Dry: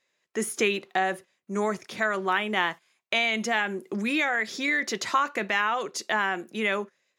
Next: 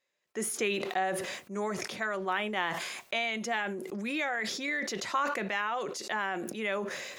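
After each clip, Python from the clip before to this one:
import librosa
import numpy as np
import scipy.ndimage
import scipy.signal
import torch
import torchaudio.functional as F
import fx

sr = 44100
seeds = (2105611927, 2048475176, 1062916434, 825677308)

y = fx.peak_eq(x, sr, hz=630.0, db=7.0, octaves=0.47)
y = fx.notch(y, sr, hz=650.0, q=12.0)
y = fx.sustainer(y, sr, db_per_s=33.0)
y = y * 10.0 ** (-7.5 / 20.0)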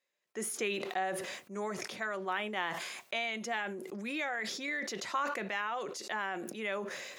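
y = fx.low_shelf(x, sr, hz=82.0, db=-10.5)
y = y * 10.0 ** (-3.5 / 20.0)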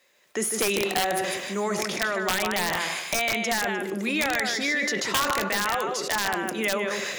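y = fx.echo_feedback(x, sr, ms=152, feedback_pct=18, wet_db=-5)
y = (np.mod(10.0 ** (24.5 / 20.0) * y + 1.0, 2.0) - 1.0) / 10.0 ** (24.5 / 20.0)
y = fx.band_squash(y, sr, depth_pct=40)
y = y * 10.0 ** (9.0 / 20.0)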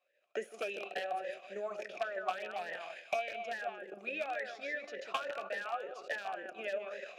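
y = np.where(x < 0.0, 10.0 ** (-3.0 / 20.0) * x, x)
y = fx.transient(y, sr, attack_db=9, sustain_db=-9)
y = fx.vowel_sweep(y, sr, vowels='a-e', hz=3.5)
y = y * 10.0 ** (-2.0 / 20.0)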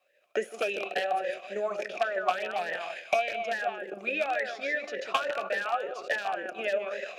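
y = fx.wow_flutter(x, sr, seeds[0], rate_hz=2.1, depth_cents=22.0)
y = y * 10.0 ** (8.5 / 20.0)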